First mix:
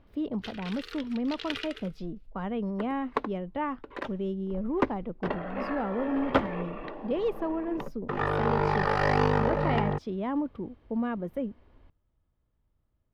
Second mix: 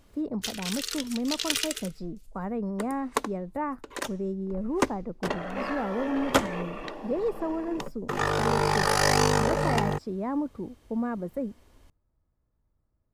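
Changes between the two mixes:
speech: add boxcar filter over 14 samples; master: remove distance through air 380 m

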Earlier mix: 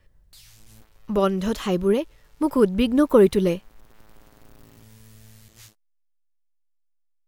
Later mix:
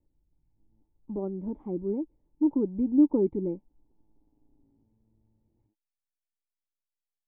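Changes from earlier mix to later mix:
background -8.5 dB; master: add cascade formant filter u

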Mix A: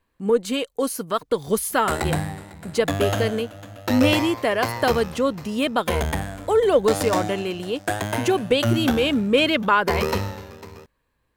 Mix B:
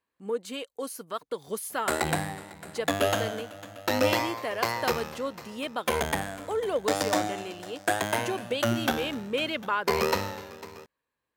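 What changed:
speech -9.5 dB; master: add high-pass 330 Hz 6 dB/octave

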